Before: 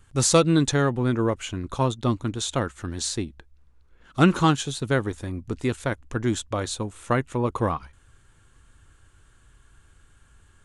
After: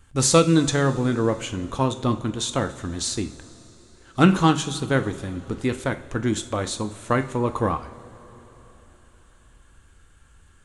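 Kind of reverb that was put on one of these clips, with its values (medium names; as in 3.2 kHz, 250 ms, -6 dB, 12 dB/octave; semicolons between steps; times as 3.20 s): two-slope reverb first 0.39 s, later 4.1 s, from -18 dB, DRR 8 dB; trim +1 dB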